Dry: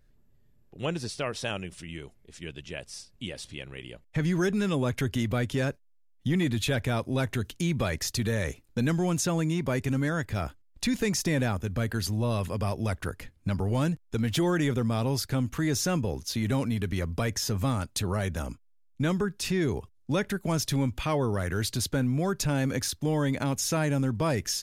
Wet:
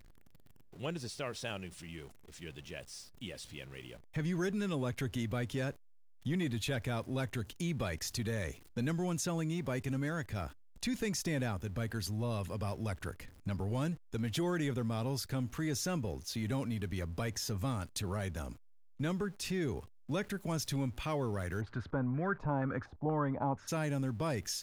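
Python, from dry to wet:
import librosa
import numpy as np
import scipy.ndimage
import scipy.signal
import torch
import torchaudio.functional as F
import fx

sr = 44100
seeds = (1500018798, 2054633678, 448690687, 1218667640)

y = x + 0.5 * 10.0 ** (-44.5 / 20.0) * np.sign(x)
y = fx.filter_held_lowpass(y, sr, hz=4.2, low_hz=800.0, high_hz=1600.0, at=(21.6, 23.67), fade=0.02)
y = y * librosa.db_to_amplitude(-8.5)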